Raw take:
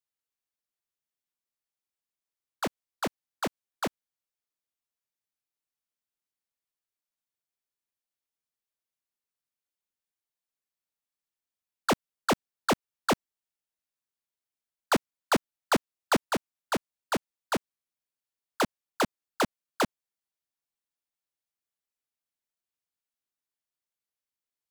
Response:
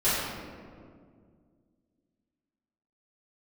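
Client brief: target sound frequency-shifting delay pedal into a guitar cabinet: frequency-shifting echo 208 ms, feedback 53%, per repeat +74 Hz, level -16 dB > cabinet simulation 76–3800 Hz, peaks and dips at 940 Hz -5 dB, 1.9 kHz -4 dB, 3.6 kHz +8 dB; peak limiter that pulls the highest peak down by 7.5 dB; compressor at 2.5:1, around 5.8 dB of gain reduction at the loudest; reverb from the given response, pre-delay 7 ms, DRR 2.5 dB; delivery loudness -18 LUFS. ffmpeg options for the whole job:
-filter_complex "[0:a]acompressor=threshold=0.0282:ratio=2.5,alimiter=level_in=1.78:limit=0.0631:level=0:latency=1,volume=0.562,asplit=2[s0][s1];[1:a]atrim=start_sample=2205,adelay=7[s2];[s1][s2]afir=irnorm=-1:irlink=0,volume=0.15[s3];[s0][s3]amix=inputs=2:normalize=0,asplit=6[s4][s5][s6][s7][s8][s9];[s5]adelay=208,afreqshift=74,volume=0.158[s10];[s6]adelay=416,afreqshift=148,volume=0.0841[s11];[s7]adelay=624,afreqshift=222,volume=0.0447[s12];[s8]adelay=832,afreqshift=296,volume=0.0237[s13];[s9]adelay=1040,afreqshift=370,volume=0.0124[s14];[s4][s10][s11][s12][s13][s14]amix=inputs=6:normalize=0,highpass=76,equalizer=f=940:t=q:w=4:g=-5,equalizer=f=1900:t=q:w=4:g=-4,equalizer=f=3600:t=q:w=4:g=8,lowpass=f=3800:w=0.5412,lowpass=f=3800:w=1.3066,volume=10.6"

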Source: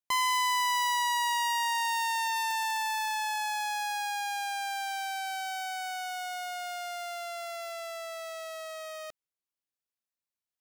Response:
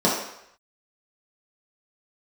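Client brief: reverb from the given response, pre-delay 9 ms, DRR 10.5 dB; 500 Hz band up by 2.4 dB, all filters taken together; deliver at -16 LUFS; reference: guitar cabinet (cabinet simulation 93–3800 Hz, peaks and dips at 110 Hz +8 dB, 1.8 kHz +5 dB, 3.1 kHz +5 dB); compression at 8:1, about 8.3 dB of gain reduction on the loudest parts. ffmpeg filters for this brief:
-filter_complex "[0:a]equalizer=f=500:t=o:g=4,acompressor=threshold=0.02:ratio=8,asplit=2[s0][s1];[1:a]atrim=start_sample=2205,adelay=9[s2];[s1][s2]afir=irnorm=-1:irlink=0,volume=0.0376[s3];[s0][s3]amix=inputs=2:normalize=0,highpass=93,equalizer=f=110:t=q:w=4:g=8,equalizer=f=1800:t=q:w=4:g=5,equalizer=f=3100:t=q:w=4:g=5,lowpass=f=3800:w=0.5412,lowpass=f=3800:w=1.3066,volume=8.91"

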